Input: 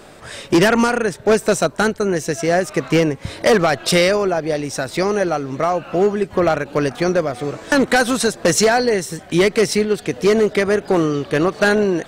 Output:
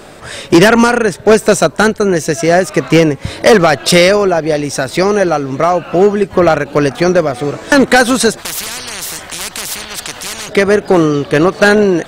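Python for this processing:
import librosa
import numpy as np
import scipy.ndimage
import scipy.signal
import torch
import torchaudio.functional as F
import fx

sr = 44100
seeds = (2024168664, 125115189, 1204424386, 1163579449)

y = fx.spectral_comp(x, sr, ratio=10.0, at=(8.37, 10.48), fade=0.02)
y = y * librosa.db_to_amplitude(7.0)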